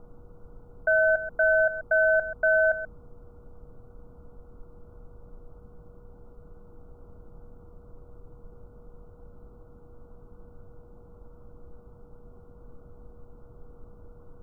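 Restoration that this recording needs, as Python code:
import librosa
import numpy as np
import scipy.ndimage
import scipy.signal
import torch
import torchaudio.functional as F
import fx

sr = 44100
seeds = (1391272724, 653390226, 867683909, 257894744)

y = fx.notch(x, sr, hz=480.0, q=30.0)
y = fx.noise_reduce(y, sr, print_start_s=9.39, print_end_s=9.89, reduce_db=20.0)
y = fx.fix_echo_inverse(y, sr, delay_ms=132, level_db=-12.5)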